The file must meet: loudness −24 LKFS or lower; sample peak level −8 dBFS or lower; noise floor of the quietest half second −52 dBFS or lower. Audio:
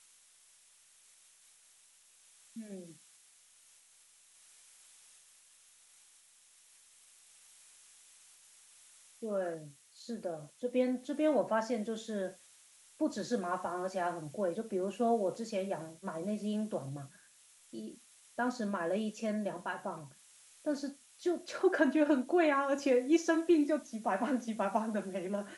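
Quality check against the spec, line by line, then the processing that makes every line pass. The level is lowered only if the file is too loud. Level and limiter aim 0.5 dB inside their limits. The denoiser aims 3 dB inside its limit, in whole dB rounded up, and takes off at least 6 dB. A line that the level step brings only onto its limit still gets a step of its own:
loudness −34.0 LKFS: in spec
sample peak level −16.5 dBFS: in spec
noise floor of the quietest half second −64 dBFS: in spec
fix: no processing needed

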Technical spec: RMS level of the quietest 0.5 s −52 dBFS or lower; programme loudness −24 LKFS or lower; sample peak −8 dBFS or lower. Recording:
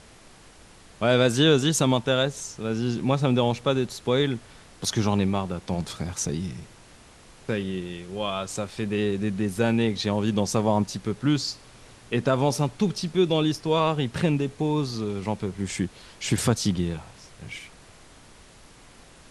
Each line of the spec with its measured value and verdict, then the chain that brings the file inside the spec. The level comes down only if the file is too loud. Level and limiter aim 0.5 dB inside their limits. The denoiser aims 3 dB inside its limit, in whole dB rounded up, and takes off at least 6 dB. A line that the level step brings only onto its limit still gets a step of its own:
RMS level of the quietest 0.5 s −50 dBFS: out of spec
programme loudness −25.5 LKFS: in spec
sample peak −7.0 dBFS: out of spec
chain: broadband denoise 6 dB, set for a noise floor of −50 dBFS
brickwall limiter −8.5 dBFS

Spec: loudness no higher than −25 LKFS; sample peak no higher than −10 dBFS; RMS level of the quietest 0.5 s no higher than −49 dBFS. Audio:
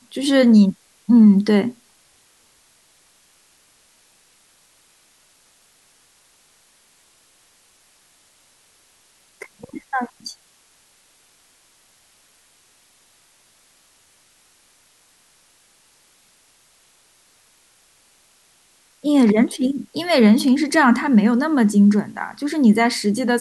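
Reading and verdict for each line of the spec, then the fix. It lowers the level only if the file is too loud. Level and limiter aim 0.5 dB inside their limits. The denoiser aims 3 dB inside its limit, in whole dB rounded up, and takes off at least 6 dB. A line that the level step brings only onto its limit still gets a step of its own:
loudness −16.5 LKFS: out of spec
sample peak −5.0 dBFS: out of spec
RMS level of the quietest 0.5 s −57 dBFS: in spec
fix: level −9 dB

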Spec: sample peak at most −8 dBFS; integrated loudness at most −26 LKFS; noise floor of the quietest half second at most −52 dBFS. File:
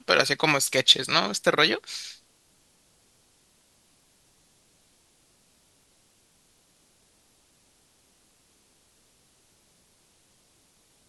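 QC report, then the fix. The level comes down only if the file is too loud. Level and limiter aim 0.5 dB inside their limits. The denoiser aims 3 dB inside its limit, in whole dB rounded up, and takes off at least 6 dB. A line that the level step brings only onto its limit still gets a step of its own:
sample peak −2.5 dBFS: out of spec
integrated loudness −22.0 LKFS: out of spec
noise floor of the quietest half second −64 dBFS: in spec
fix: level −4.5 dB
brickwall limiter −8.5 dBFS

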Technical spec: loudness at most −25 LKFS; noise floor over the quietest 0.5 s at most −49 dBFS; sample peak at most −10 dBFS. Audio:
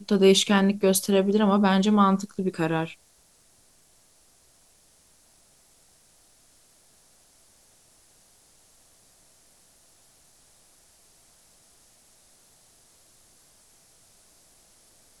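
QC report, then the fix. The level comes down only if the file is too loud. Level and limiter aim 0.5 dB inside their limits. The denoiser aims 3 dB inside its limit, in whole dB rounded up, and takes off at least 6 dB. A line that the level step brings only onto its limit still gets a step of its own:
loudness −22.0 LKFS: out of spec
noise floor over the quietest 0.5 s −60 dBFS: in spec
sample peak −7.0 dBFS: out of spec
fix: level −3.5 dB

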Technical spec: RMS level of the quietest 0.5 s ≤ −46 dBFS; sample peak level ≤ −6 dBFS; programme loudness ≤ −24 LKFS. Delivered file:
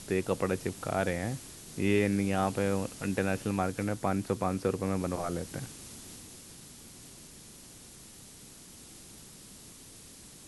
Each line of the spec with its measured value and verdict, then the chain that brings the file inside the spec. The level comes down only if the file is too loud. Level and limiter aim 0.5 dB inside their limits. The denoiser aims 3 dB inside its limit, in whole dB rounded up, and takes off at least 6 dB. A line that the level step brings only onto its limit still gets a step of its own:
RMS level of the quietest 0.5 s −51 dBFS: in spec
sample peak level −13.5 dBFS: in spec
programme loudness −31.5 LKFS: in spec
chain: no processing needed

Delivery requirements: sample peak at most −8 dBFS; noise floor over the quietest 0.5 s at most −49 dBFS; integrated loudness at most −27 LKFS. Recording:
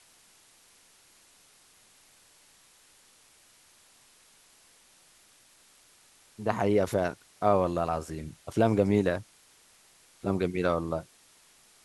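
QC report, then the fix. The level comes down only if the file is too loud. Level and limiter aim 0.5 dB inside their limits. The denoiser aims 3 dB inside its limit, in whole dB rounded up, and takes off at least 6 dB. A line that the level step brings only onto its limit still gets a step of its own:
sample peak −9.5 dBFS: in spec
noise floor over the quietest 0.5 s −60 dBFS: in spec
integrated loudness −28.5 LKFS: in spec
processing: no processing needed

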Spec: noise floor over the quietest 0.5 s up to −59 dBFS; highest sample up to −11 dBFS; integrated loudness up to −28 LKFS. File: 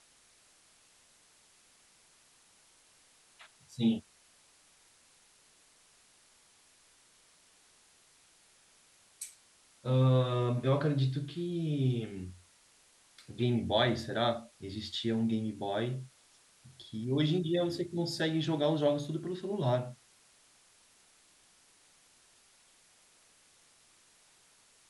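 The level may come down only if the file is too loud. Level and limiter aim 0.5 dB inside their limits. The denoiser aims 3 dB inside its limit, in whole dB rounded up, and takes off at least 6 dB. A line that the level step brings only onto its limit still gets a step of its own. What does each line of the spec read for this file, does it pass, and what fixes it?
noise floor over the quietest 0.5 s −64 dBFS: in spec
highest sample −14.5 dBFS: in spec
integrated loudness −32.5 LKFS: in spec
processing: no processing needed

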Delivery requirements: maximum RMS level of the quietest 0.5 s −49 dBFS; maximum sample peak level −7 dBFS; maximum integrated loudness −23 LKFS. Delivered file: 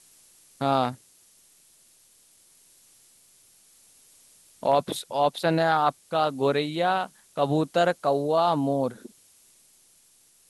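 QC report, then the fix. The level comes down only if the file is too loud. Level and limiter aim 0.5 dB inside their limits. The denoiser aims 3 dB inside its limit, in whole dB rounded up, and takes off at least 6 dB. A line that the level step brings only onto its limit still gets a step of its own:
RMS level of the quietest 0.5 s −60 dBFS: in spec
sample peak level −9.0 dBFS: in spec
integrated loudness −25.0 LKFS: in spec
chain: no processing needed

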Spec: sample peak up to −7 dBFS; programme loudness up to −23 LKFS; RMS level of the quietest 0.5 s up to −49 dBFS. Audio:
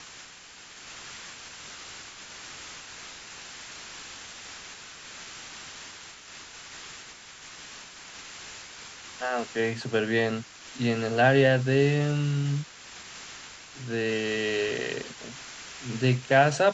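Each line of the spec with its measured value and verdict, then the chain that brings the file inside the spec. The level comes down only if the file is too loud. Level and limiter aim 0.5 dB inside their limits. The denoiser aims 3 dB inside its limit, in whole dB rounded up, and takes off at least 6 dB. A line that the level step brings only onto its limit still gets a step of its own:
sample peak −9.0 dBFS: in spec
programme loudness −26.0 LKFS: in spec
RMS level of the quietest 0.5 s −48 dBFS: out of spec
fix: broadband denoise 6 dB, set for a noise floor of −48 dBFS

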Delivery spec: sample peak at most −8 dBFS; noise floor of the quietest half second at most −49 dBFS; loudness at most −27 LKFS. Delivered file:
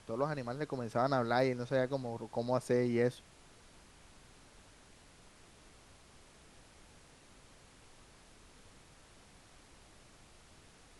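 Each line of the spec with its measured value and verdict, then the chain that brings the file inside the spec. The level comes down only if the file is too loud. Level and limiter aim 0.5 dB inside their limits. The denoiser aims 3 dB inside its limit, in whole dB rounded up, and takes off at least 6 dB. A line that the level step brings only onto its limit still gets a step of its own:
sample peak −17.5 dBFS: in spec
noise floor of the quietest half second −60 dBFS: in spec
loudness −34.0 LKFS: in spec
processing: no processing needed

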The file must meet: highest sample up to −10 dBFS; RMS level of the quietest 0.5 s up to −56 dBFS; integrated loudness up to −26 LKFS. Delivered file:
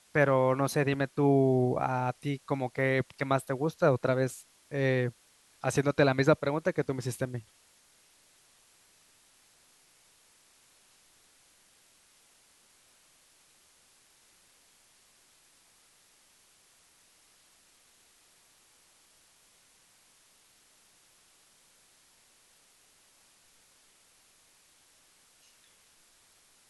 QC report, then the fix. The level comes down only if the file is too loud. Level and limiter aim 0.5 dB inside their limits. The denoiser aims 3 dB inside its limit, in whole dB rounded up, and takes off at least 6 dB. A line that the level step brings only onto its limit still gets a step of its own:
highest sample −9.5 dBFS: out of spec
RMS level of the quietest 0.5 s −64 dBFS: in spec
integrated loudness −29.0 LKFS: in spec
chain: brickwall limiter −10.5 dBFS

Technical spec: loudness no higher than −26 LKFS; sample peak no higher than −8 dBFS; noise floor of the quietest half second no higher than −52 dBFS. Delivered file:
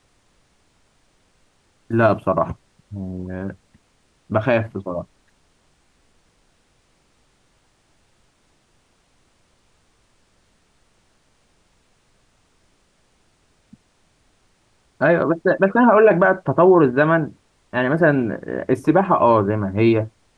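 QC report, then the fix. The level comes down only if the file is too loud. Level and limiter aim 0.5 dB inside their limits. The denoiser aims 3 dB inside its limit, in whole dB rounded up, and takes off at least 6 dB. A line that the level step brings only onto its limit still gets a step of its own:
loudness −18.0 LKFS: out of spec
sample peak −4.0 dBFS: out of spec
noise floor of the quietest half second −62 dBFS: in spec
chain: level −8.5 dB

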